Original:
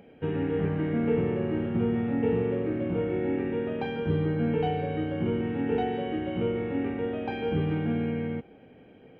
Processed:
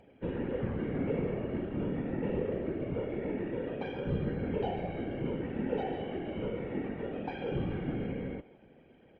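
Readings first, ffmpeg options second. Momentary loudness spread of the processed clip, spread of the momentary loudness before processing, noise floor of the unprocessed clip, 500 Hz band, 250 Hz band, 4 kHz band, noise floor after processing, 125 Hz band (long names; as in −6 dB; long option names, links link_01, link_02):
4 LU, 5 LU, −53 dBFS, −6.5 dB, −7.0 dB, −6.5 dB, −60 dBFS, −6.5 dB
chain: -filter_complex "[0:a]afftfilt=real='hypot(re,im)*cos(2*PI*random(0))':imag='hypot(re,im)*sin(2*PI*random(1))':win_size=512:overlap=0.75,asplit=2[link_01][link_02];[link_02]adelay=140,highpass=300,lowpass=3400,asoftclip=type=hard:threshold=-27.5dB,volume=-18dB[link_03];[link_01][link_03]amix=inputs=2:normalize=0" -ar 44100 -c:a libmp3lame -b:a 48k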